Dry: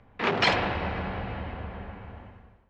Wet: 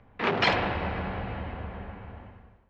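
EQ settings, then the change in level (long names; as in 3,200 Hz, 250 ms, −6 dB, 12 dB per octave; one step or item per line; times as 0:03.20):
high-frequency loss of the air 80 metres
0.0 dB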